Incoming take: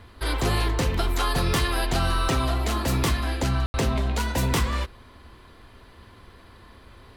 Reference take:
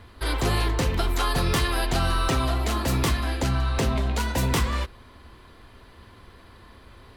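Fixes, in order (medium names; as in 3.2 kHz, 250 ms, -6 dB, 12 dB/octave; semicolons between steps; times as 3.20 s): room tone fill 3.66–3.74 s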